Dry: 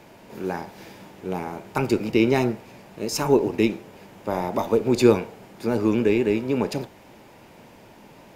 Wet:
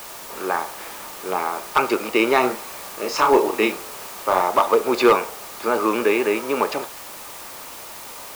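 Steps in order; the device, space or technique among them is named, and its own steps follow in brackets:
drive-through speaker (band-pass filter 530–3,600 Hz; parametric band 1,200 Hz +12 dB 0.36 octaves; hard clipping −15 dBFS, distortion −17 dB; white noise bed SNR 16 dB)
0:02.40–0:04.42: double-tracking delay 32 ms −6.5 dB
level +7.5 dB

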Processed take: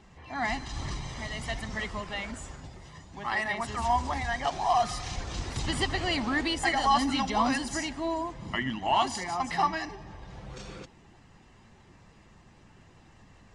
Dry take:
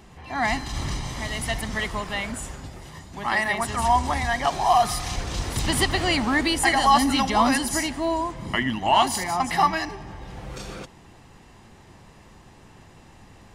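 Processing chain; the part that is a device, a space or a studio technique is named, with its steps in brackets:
clip after many re-uploads (low-pass filter 7,900 Hz 24 dB per octave; spectral magnitudes quantised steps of 15 dB)
level −6 dB

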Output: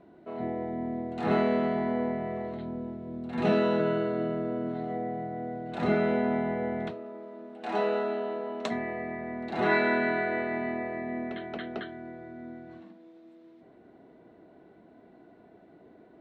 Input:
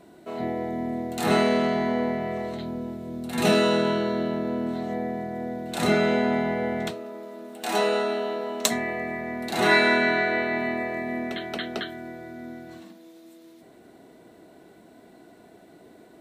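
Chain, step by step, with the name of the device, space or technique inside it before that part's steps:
0:03.79–0:05.75: comb filter 6.7 ms, depth 66%
phone in a pocket (low-pass filter 3,100 Hz 12 dB per octave; high-shelf EQ 2,100 Hz −8 dB)
level −3.5 dB

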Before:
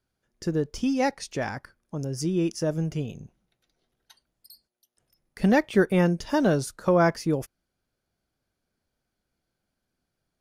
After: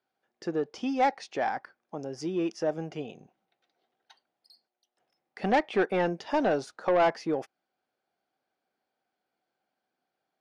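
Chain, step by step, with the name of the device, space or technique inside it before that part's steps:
intercom (band-pass filter 330–3,700 Hz; parametric band 770 Hz +10 dB 0.26 octaves; soft clipping −17.5 dBFS, distortion −13 dB)

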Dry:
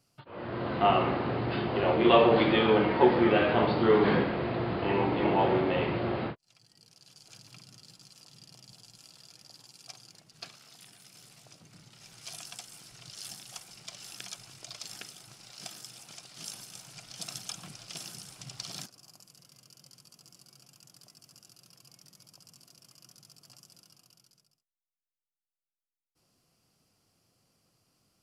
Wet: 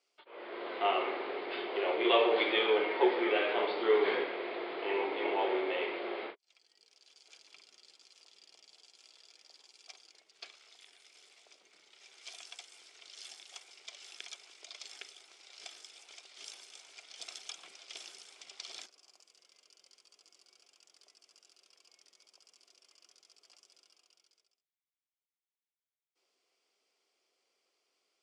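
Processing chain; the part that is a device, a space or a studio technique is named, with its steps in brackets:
phone speaker on a table (loudspeaker in its box 380–8,400 Hz, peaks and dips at 400 Hz +7 dB, 2,200 Hz +9 dB, 3,400 Hz +7 dB)
level −7 dB

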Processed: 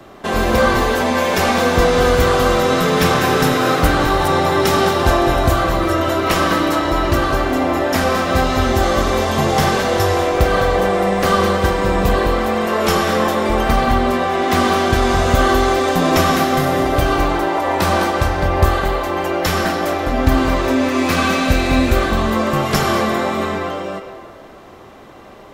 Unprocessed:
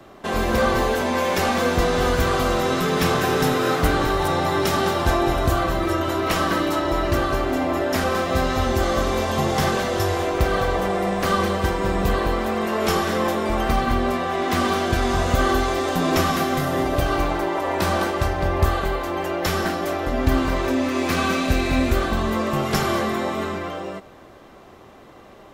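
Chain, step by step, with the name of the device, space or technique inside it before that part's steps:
filtered reverb send (on a send: high-pass filter 460 Hz + low-pass filter 7,800 Hz 12 dB per octave + convolution reverb RT60 1.7 s, pre-delay 94 ms, DRR 6.5 dB)
on the sum: level +5 dB

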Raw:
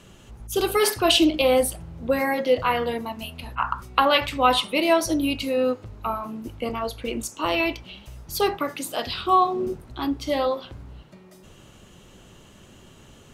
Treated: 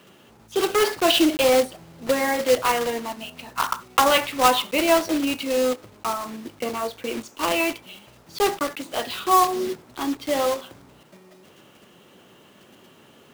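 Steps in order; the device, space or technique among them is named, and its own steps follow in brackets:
early digital voice recorder (band-pass filter 220–3,600 Hz; one scale factor per block 3 bits)
level +1 dB

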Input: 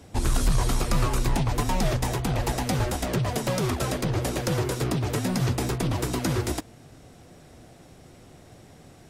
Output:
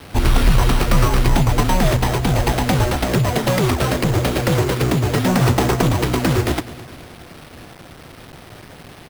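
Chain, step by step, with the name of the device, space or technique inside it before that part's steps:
0:05.26–0:05.89: parametric band 890 Hz +5.5 dB 2.2 octaves
repeating echo 211 ms, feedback 54%, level −18 dB
early 8-bit sampler (sample-rate reduction 7,000 Hz, jitter 0%; bit reduction 8 bits)
level +8.5 dB

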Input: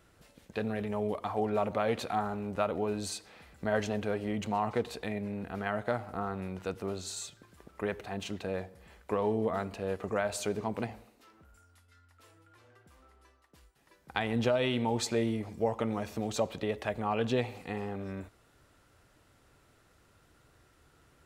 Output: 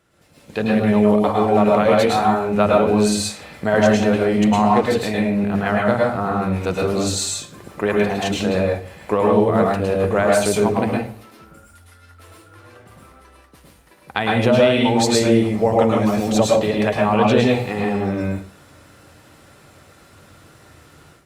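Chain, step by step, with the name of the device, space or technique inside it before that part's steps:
far-field microphone of a smart speaker (convolution reverb RT60 0.35 s, pre-delay 102 ms, DRR −1.5 dB; high-pass filter 81 Hz; automatic gain control gain up to 13 dB; Opus 48 kbit/s 48,000 Hz)

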